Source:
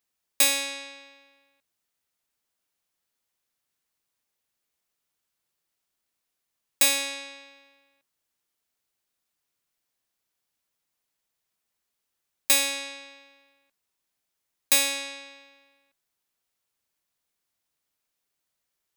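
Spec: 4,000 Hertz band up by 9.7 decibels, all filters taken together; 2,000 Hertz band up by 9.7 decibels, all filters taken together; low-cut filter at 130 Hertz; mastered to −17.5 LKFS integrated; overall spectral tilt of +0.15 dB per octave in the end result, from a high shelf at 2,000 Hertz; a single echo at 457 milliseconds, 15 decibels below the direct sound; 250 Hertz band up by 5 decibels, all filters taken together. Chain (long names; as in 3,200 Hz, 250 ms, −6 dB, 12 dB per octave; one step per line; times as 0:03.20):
high-pass filter 130 Hz
parametric band 250 Hz +5.5 dB
high-shelf EQ 2,000 Hz +4 dB
parametric band 2,000 Hz +7.5 dB
parametric band 4,000 Hz +5.5 dB
single-tap delay 457 ms −15 dB
level −0.5 dB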